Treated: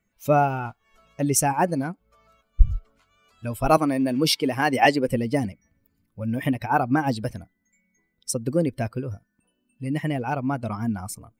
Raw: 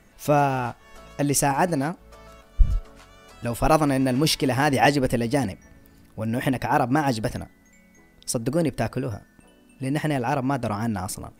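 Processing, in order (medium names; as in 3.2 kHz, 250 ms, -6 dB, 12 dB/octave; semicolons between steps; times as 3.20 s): expander on every frequency bin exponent 1.5; 3.77–5.08 s: high-pass 190 Hz 12 dB/octave; trim +2.5 dB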